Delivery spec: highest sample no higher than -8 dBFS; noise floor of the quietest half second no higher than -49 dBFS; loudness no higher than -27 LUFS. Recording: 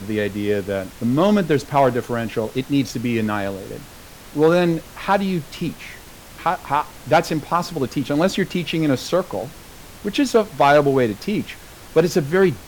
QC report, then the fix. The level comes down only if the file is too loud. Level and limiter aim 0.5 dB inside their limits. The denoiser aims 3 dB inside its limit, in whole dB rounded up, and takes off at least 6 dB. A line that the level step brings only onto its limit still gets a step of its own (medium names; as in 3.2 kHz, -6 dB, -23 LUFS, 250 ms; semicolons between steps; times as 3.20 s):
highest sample -4.5 dBFS: fail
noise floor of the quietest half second -41 dBFS: fail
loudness -20.5 LUFS: fail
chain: noise reduction 6 dB, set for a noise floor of -41 dBFS; trim -7 dB